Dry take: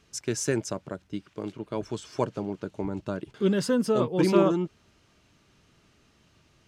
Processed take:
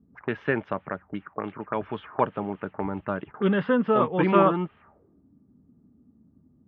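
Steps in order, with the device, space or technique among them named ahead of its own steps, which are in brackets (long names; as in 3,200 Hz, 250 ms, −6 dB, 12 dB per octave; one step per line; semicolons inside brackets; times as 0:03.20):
envelope filter bass rig (envelope-controlled low-pass 230–3,300 Hz up, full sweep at −30 dBFS; loudspeaker in its box 63–2,200 Hz, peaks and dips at 120 Hz −6 dB, 340 Hz −5 dB, 820 Hz +6 dB, 1,200 Hz +7 dB, 1,800 Hz +4 dB)
level +2 dB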